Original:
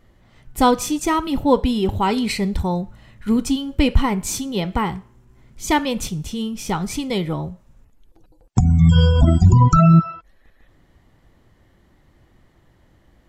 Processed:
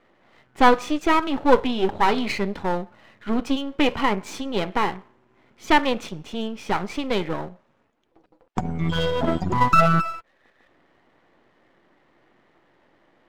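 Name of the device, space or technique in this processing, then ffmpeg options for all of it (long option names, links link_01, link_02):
crystal radio: -af "highpass=330,lowpass=2700,aeval=exprs='if(lt(val(0),0),0.251*val(0),val(0))':channel_layout=same,volume=5.5dB"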